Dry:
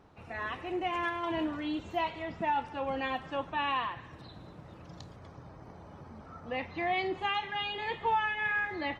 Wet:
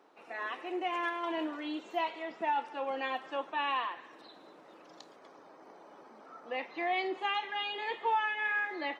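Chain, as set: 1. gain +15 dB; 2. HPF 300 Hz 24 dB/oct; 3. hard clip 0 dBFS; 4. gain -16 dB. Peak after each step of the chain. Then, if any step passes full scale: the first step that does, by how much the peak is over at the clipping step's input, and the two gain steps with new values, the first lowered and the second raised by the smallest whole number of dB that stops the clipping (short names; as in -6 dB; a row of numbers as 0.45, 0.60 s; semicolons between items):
-5.0, -5.0, -5.0, -21.0 dBFS; no overload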